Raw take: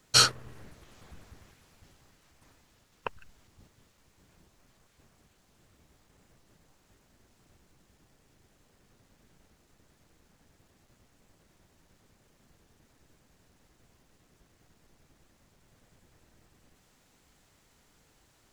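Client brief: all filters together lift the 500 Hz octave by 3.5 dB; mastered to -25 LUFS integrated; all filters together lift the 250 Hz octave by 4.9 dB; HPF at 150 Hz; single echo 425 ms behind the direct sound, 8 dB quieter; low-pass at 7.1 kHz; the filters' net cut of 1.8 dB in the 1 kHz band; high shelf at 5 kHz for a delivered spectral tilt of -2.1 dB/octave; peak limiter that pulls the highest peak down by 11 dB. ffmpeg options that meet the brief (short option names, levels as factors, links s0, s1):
-af "highpass=150,lowpass=7100,equalizer=f=250:t=o:g=7,equalizer=f=500:t=o:g=3,equalizer=f=1000:t=o:g=-3,highshelf=f=5000:g=-6.5,alimiter=limit=0.1:level=0:latency=1,aecho=1:1:425:0.398,volume=5.96"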